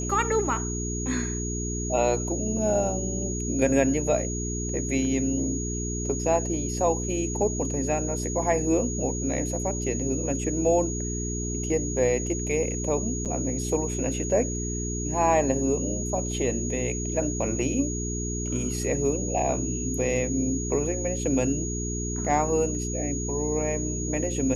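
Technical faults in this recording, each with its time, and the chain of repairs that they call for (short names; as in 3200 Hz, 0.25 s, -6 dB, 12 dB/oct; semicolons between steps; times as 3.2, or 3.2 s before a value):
hum 60 Hz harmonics 7 -31 dBFS
tone 6700 Hz -33 dBFS
13.25–13.26 gap 7.3 ms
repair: notch 6700 Hz, Q 30; de-hum 60 Hz, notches 7; interpolate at 13.25, 7.3 ms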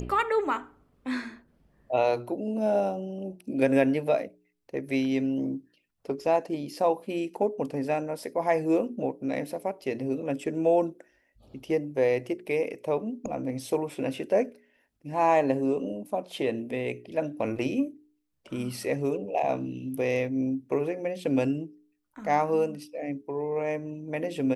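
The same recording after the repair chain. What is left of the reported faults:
none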